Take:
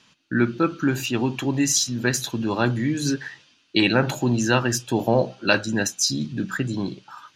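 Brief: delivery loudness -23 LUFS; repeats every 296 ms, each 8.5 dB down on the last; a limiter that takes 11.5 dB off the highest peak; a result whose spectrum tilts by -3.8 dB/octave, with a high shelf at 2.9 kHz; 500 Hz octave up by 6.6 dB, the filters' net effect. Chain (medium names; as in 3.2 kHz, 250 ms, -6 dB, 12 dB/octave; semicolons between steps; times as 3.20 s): peaking EQ 500 Hz +8 dB; treble shelf 2.9 kHz +6.5 dB; peak limiter -12 dBFS; feedback delay 296 ms, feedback 38%, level -8.5 dB; trim -0.5 dB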